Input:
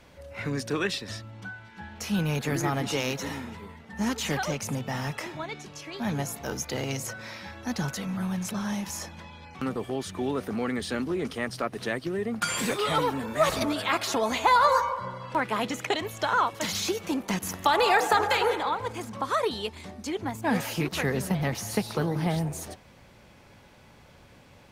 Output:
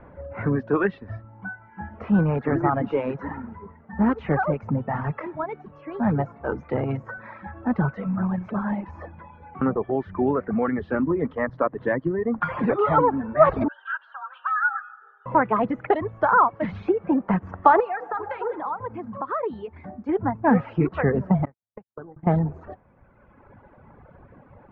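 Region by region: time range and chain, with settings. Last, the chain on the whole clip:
11.02–12.52 ripple EQ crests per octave 1.1, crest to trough 6 dB + mismatched tape noise reduction encoder only
13.68–15.26 double band-pass 1900 Hz, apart 1.1 oct + frequency shift +280 Hz
17.8–20.09 high shelf 6400 Hz +7.5 dB + compressor 2:1, threshold -37 dBFS + HPF 110 Hz 6 dB/oct
21.45–22.27 gate -26 dBFS, range -60 dB + Butterworth band-stop 5100 Hz, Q 3.7 + compressor 12:1, threshold -39 dBFS
whole clip: LPF 1500 Hz 24 dB/oct; reverb removal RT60 1.9 s; gain +8.5 dB

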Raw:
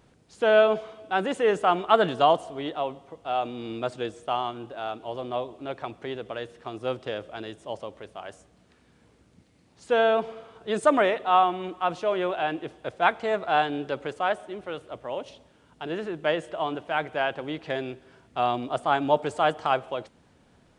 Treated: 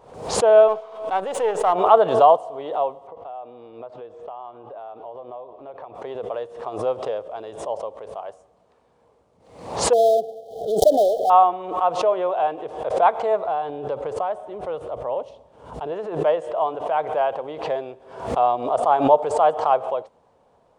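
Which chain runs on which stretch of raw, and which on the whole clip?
0.68–1.73 half-wave gain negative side -7 dB + tilt shelf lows -3.5 dB, about 890 Hz
3.07–5.95 block floating point 7-bit + LPF 3200 Hz + compressor 5:1, threshold -39 dBFS
9.93–11.3 switching dead time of 0.17 ms + brick-wall FIR band-stop 820–3000 Hz
13.45–15.92 low shelf 180 Hz +11 dB + compressor, threshold -25 dBFS
whole clip: band shelf 700 Hz +14.5 dB; backwards sustainer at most 86 dB/s; gain -8 dB

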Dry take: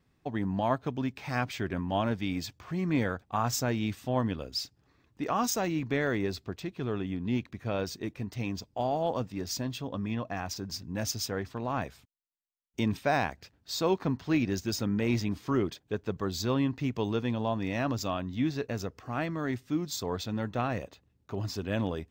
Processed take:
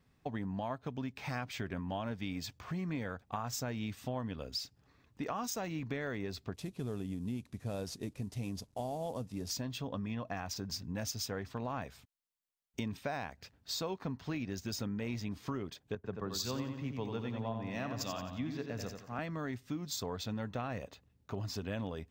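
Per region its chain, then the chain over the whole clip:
6.54–9.51 CVSD 64 kbps + bell 1700 Hz -9 dB 2.2 oct
15.95–19.19 feedback echo 89 ms, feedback 48%, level -5.5 dB + three-band expander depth 100%
whole clip: bell 340 Hz -7 dB 0.23 oct; compressor, threshold -35 dBFS

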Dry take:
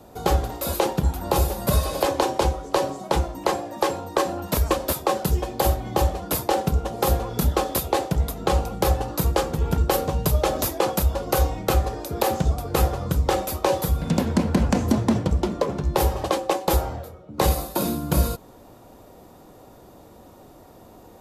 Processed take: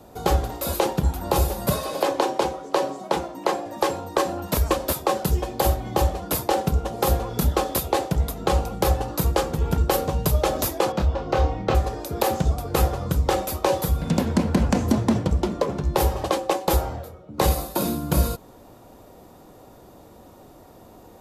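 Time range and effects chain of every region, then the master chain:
1.73–3.66 HPF 190 Hz + high shelf 6000 Hz -5.5 dB
10.92–11.75 air absorption 170 m + doubler 26 ms -6 dB
whole clip: dry

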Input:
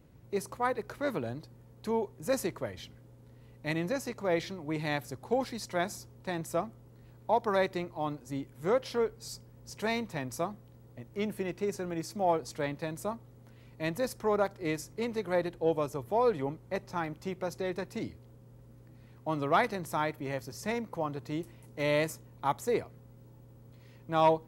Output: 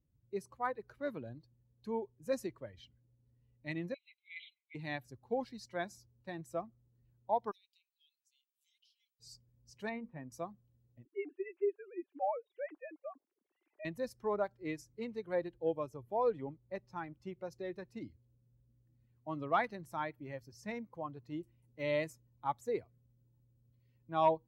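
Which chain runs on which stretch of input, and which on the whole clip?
3.94–4.75 brick-wall FIR band-pass 2000–4100 Hz + comb 5.9 ms, depth 36%
7.51–9.2 steep high-pass 2600 Hz 48 dB/oct + compressor 4:1, threshold -53 dBFS
9.89–10.32 Gaussian blur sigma 3.4 samples + notches 60/120/180/240/300/360/420/480 Hz
11.05–13.85 sine-wave speech + three-band squash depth 40%
whole clip: per-bin expansion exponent 1.5; HPF 1200 Hz 6 dB/oct; tilt -4 dB/oct; gain +1 dB

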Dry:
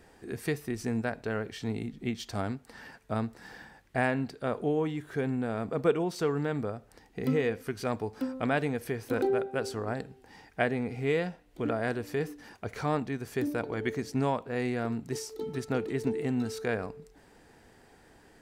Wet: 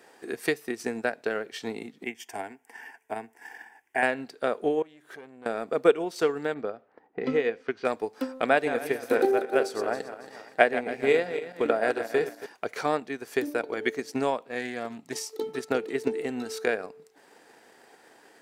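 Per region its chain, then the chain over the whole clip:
2.04–4.03 bell 330 Hz -6 dB 0.73 oct + fixed phaser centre 830 Hz, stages 8
4.82–5.46 compressor 4:1, threshold -42 dBFS + tube stage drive 36 dB, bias 0.65
6.54–7.85 low-pass opened by the level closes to 870 Hz, open at -26.5 dBFS + air absorption 110 m
8.49–12.46 regenerating reverse delay 0.138 s, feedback 61%, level -8 dB + notch 3000 Hz, Q 21 + dynamic EQ 690 Hz, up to +3 dB, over -37 dBFS, Q 0.75
14.46–15.33 bell 420 Hz -7.5 dB 0.74 oct + notch 1500 Hz, Q 5.1 + Doppler distortion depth 0.12 ms
whole clip: HPF 380 Hz 12 dB/oct; dynamic EQ 990 Hz, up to -4 dB, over -45 dBFS, Q 1.6; transient shaper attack +5 dB, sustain -5 dB; gain +4.5 dB

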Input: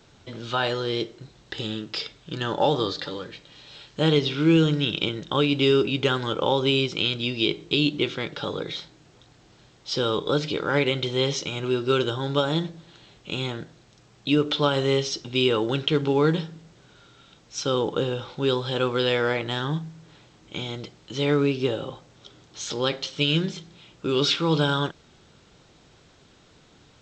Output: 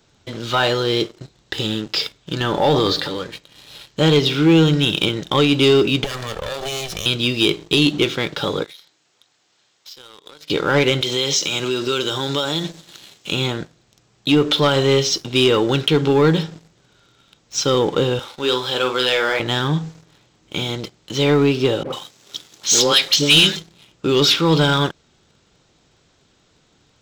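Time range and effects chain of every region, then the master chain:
2.4–3.18 air absorption 71 m + transient shaper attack -5 dB, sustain +6 dB
6.04–7.06 minimum comb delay 1.7 ms + compressor 5:1, threshold -31 dBFS
8.64–10.5 HPF 1200 Hz 6 dB/oct + compressor 8:1, threshold -43 dBFS
11.01–13.32 HPF 150 Hz + high shelf 3000 Hz +11 dB + compressor 3:1, threshold -26 dBFS
18.19–19.4 HPF 660 Hz 6 dB/oct + doubler 47 ms -8 dB
21.83–23.56 HPF 150 Hz + high shelf 2100 Hz +11.5 dB + dispersion highs, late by 0.103 s, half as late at 960 Hz
whole clip: high shelf 6300 Hz +7 dB; sample leveller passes 2

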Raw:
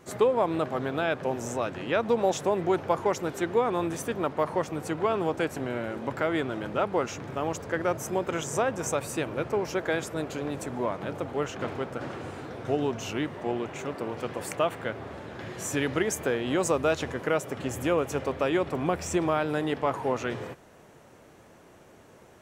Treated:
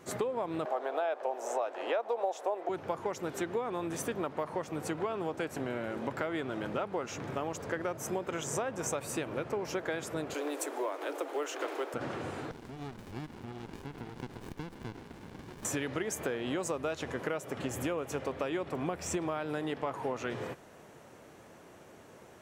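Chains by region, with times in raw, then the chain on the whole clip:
0.65–2.69 HPF 360 Hz 24 dB/oct + bell 720 Hz +12.5 dB 1.2 oct
10.34–11.94 steep high-pass 290 Hz 72 dB/oct + high shelf 7900 Hz +11 dB + companded quantiser 8-bit
12.51–15.65 tilt +3 dB/oct + compressor 4:1, threshold -37 dBFS + running maximum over 65 samples
whole clip: low shelf 68 Hz -8.5 dB; compressor 5:1, threshold -31 dBFS

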